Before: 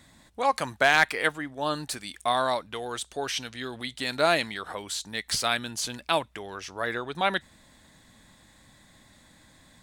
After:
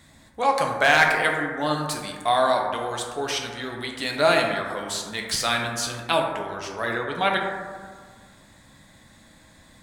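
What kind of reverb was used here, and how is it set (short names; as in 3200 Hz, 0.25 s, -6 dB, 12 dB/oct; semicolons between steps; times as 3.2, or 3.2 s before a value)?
plate-style reverb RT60 1.7 s, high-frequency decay 0.3×, DRR 0.5 dB; gain +1.5 dB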